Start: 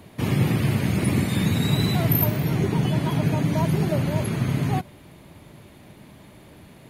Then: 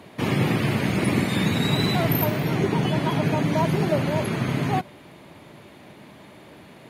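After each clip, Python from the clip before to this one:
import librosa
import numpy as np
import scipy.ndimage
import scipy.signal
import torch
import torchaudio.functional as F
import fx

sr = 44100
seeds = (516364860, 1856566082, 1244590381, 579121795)

y = fx.highpass(x, sr, hz=300.0, slope=6)
y = fx.high_shelf(y, sr, hz=7000.0, db=-11.0)
y = y * librosa.db_to_amplitude(5.0)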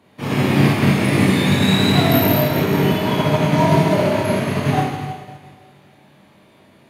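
y = fx.doubler(x, sr, ms=21.0, db=-6)
y = fx.rev_schroeder(y, sr, rt60_s=2.2, comb_ms=28, drr_db=-4.5)
y = fx.upward_expand(y, sr, threshold_db=-37.0, expansion=1.5)
y = y * librosa.db_to_amplitude(1.5)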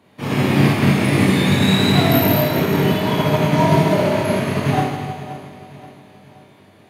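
y = fx.echo_feedback(x, sr, ms=527, feedback_pct=47, wet_db=-17.0)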